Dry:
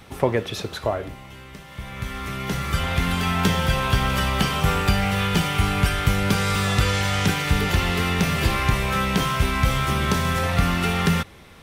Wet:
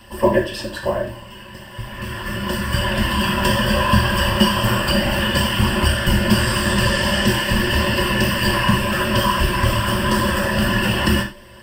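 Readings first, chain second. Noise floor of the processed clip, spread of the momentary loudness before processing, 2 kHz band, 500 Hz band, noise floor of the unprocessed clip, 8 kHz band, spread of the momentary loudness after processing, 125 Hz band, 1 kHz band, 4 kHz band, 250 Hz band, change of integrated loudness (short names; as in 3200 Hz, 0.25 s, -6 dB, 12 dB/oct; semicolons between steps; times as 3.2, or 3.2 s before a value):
-39 dBFS, 10 LU, +5.0 dB, +5.5 dB, -43 dBFS, +3.5 dB, 10 LU, +1.5 dB, +3.0 dB, +6.0 dB, +5.0 dB, +4.0 dB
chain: short-mantissa float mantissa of 4-bit; whisperiser; ripple EQ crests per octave 1.3, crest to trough 16 dB; non-linear reverb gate 0.13 s falling, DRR 1 dB; gain -1 dB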